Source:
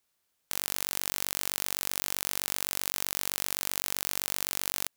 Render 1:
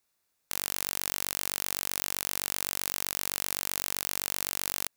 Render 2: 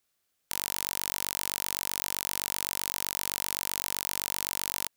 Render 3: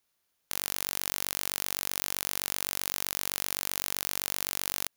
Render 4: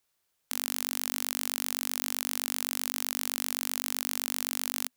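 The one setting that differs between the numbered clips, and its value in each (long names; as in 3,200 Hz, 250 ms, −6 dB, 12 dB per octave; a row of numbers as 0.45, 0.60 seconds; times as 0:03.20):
notch filter, centre frequency: 3,100, 940, 7,900, 250 Hertz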